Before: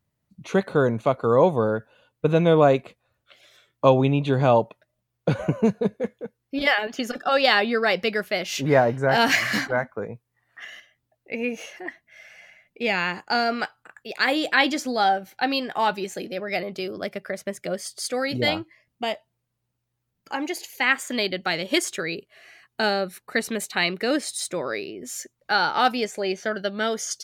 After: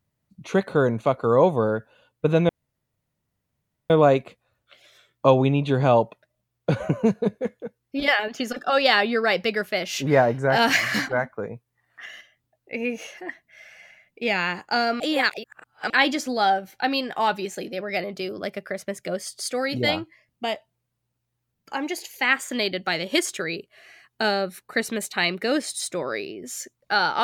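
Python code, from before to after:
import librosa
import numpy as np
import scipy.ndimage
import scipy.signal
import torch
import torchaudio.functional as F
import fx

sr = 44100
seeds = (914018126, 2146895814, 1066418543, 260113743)

y = fx.edit(x, sr, fx.insert_room_tone(at_s=2.49, length_s=1.41),
    fx.reverse_span(start_s=13.59, length_s=0.9), tone=tone)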